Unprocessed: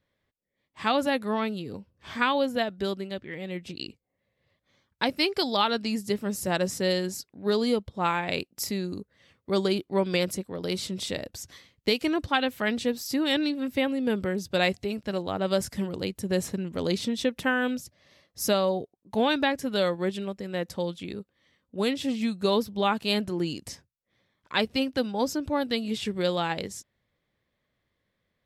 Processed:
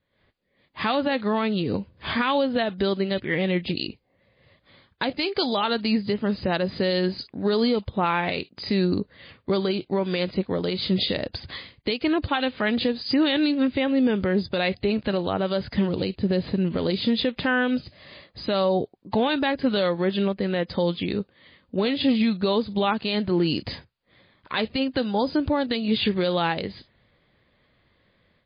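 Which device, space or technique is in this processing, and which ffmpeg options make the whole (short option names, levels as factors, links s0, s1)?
low-bitrate web radio: -filter_complex "[0:a]asettb=1/sr,asplit=3[s0][s1][s2];[s0]atrim=end=15.894[s3];[s1]atrim=start=15.89:end=16.68,asetpts=PTS-STARTPTS,afade=t=in:d=0.004:c=qsin,afade=t=out:st=0.786:d=0.004:c=qsin,equalizer=f=1500:w=0.58:g=-4.5[s4];[s2]atrim=start=16.676[s5];[s3][s4]acrossfade=d=0.004:c1=hsin:c2=qsin[s6];[s6][s5]acrossfade=d=0.004:c1=qsin:c2=hsin,dynaudnorm=f=110:g=3:m=5.01,alimiter=limit=0.237:level=0:latency=1:release=207" -ar 11025 -c:a libmp3lame -b:a 24k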